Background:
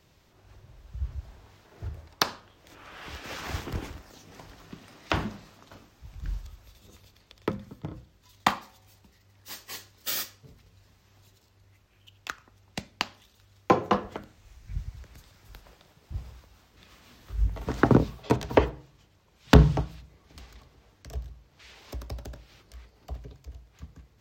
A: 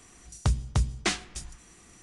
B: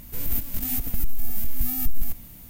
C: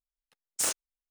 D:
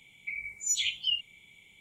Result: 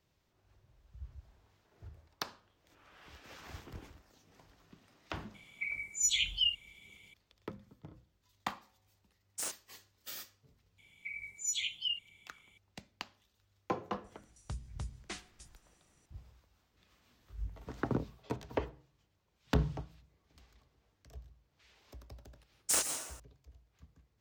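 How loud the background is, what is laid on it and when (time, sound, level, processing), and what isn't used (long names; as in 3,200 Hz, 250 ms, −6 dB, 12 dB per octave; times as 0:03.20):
background −14.5 dB
0:05.34: mix in D −1 dB
0:08.79: mix in C −10 dB
0:10.78: mix in D −6 dB
0:14.04: mix in A −17 dB
0:22.10: mix in C −1.5 dB + dense smooth reverb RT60 1 s, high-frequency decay 0.75×, pre-delay 105 ms, DRR 6 dB
not used: B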